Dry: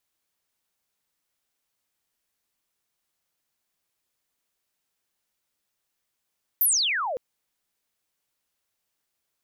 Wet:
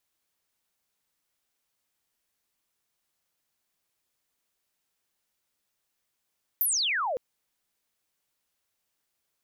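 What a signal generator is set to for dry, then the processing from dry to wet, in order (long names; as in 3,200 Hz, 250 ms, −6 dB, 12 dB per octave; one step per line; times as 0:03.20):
glide logarithmic 15,000 Hz → 470 Hz −17 dBFS → −27 dBFS 0.56 s
downward compressor, threshold −25 dBFS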